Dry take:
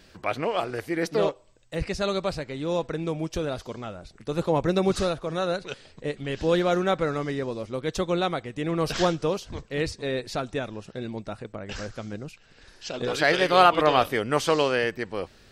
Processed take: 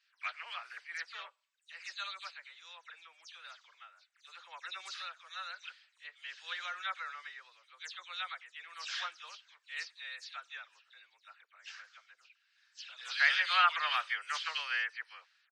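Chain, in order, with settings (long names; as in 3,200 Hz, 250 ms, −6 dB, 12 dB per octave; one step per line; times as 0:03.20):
every frequency bin delayed by itself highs early, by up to 105 ms
high-pass filter 1,400 Hz 24 dB per octave
high-frequency loss of the air 110 metres
multiband upward and downward expander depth 40%
level −4 dB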